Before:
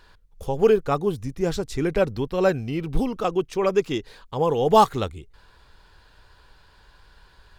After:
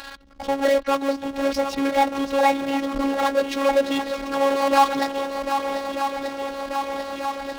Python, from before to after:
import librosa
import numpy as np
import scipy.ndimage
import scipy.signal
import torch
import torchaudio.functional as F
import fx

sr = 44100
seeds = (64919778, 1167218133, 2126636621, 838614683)

y = fx.pitch_trill(x, sr, semitones=6.0, every_ms=217)
y = scipy.signal.sosfilt(scipy.signal.butter(4, 4900.0, 'lowpass', fs=sr, output='sos'), y)
y = fx.echo_swing(y, sr, ms=1237, ratio=1.5, feedback_pct=56, wet_db=-15)
y = fx.power_curve(y, sr, exponent=0.5)
y = fx.robotise(y, sr, hz=275.0)
y = scipy.signal.sosfilt(scipy.signal.butter(2, 43.0, 'highpass', fs=sr, output='sos'), y)
y = fx.peak_eq(y, sr, hz=93.0, db=-10.5, octaves=2.4)
y = y * 10.0 ** (-1.5 / 20.0)